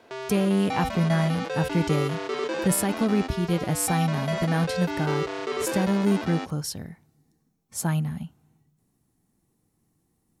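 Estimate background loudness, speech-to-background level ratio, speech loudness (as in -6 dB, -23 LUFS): -31.0 LUFS, 5.0 dB, -26.0 LUFS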